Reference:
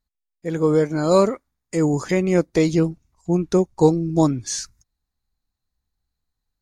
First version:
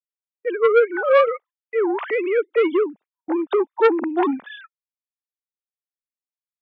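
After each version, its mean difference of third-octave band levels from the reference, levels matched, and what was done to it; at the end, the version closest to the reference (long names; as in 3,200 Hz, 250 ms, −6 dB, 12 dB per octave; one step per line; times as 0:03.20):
13.5 dB: three sine waves on the formant tracks
high-pass filter 650 Hz 6 dB per octave
noise gate −48 dBFS, range −35 dB
saturating transformer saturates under 1,100 Hz
level +6 dB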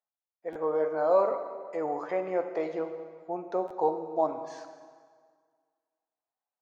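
10.0 dB: in parallel at +1.5 dB: brickwall limiter −14 dBFS, peak gain reduction 10 dB
on the sum: four-pole ladder band-pass 800 Hz, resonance 50%
dense smooth reverb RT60 1.8 s, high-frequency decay 0.8×, DRR 6.5 dB
buffer that repeats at 0:00.52/0:03.67, samples 512, times 2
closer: second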